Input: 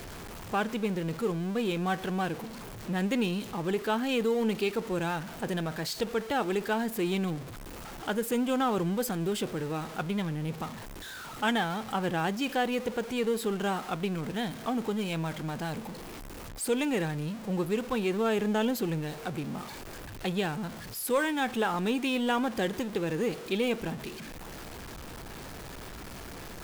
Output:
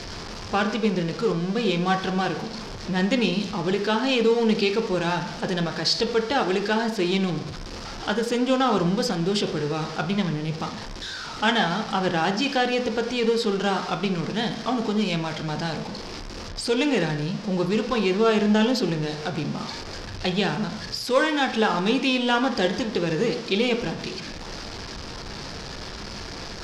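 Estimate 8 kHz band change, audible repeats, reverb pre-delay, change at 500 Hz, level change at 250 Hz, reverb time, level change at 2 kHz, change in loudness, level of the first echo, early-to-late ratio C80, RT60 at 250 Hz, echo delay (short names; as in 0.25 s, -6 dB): +3.5 dB, none, 5 ms, +6.5 dB, +6.0 dB, 0.70 s, +7.0 dB, +6.5 dB, none, 12.5 dB, 0.70 s, none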